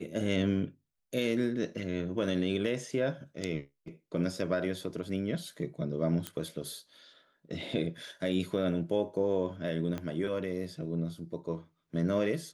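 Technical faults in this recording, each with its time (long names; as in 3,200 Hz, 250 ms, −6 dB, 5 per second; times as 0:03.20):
0:06.27: click −18 dBFS
0:09.98: click −23 dBFS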